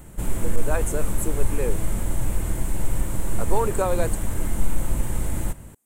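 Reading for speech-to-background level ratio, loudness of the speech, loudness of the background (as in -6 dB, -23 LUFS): 0.0 dB, -29.5 LUFS, -29.5 LUFS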